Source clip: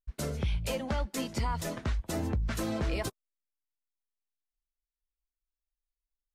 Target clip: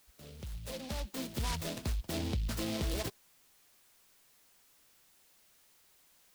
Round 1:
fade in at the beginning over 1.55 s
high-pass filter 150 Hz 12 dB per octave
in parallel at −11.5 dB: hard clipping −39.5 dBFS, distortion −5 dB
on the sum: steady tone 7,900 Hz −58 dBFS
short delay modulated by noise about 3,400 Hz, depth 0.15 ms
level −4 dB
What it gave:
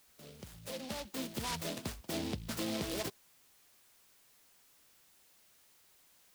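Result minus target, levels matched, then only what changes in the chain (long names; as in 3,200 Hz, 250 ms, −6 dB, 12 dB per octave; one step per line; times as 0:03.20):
125 Hz band −5.5 dB
remove: high-pass filter 150 Hz 12 dB per octave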